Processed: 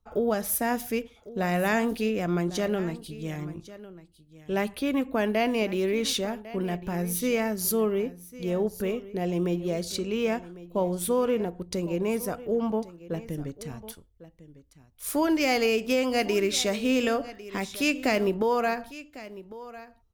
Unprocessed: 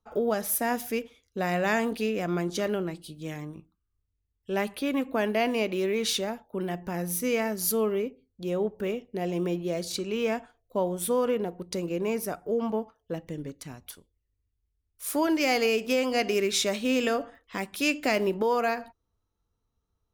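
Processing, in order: bass shelf 110 Hz +11.5 dB; delay 1101 ms -17 dB

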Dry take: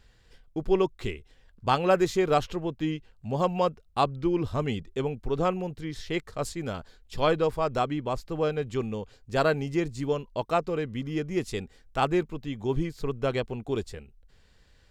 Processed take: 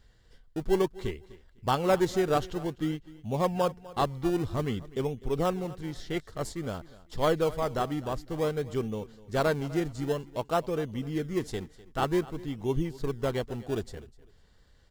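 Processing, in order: band-stop 2.5 kHz, Q 5.5; in parallel at -9.5 dB: decimation with a swept rate 28×, swing 100% 0.53 Hz; on the sum: feedback delay 251 ms, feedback 24%, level -19.5 dB; trim -3.5 dB

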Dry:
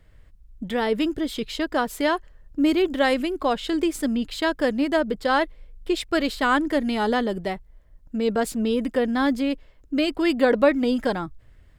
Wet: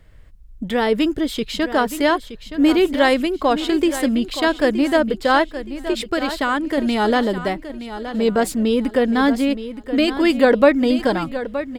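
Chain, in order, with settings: 5.41–6.78 s: compression 2.5:1, threshold -24 dBFS, peak gain reduction 6 dB; on a send: feedback delay 921 ms, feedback 31%, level -12 dB; on the sum: trim +5 dB

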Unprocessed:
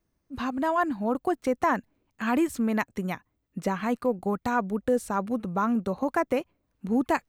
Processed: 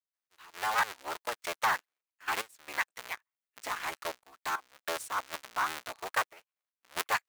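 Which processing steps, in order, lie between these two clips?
cycle switcher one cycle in 3, inverted; high-pass 1.3 kHz 12 dB/octave; in parallel at -9.5 dB: companded quantiser 2-bit; on the sum: trance gate ".x..xxxxxxxxxxx." 112 bpm -12 dB; upward expansion 1.5:1, over -45 dBFS

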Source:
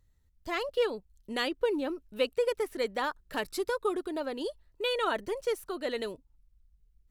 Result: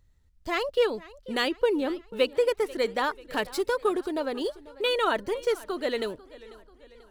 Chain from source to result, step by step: median filter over 3 samples; modulated delay 491 ms, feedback 51%, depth 110 cents, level -20 dB; trim +4.5 dB

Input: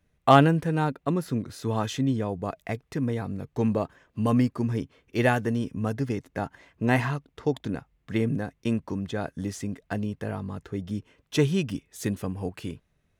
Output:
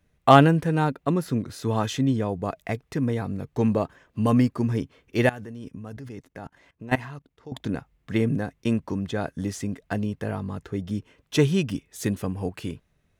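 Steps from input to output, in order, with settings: 5.26–7.52 s: level held to a coarse grid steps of 20 dB; trim +2.5 dB

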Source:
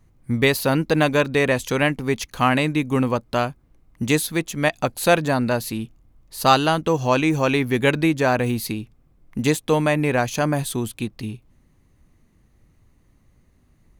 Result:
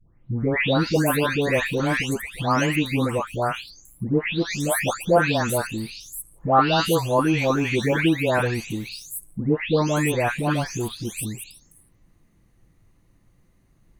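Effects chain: delay that grows with frequency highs late, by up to 523 ms

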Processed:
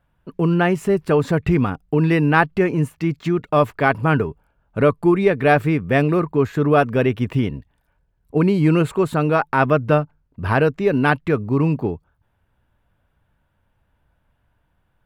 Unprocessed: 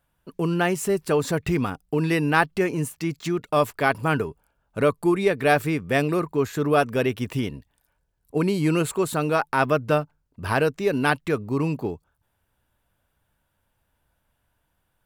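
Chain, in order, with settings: tone controls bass +4 dB, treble -14 dB; trim +4 dB

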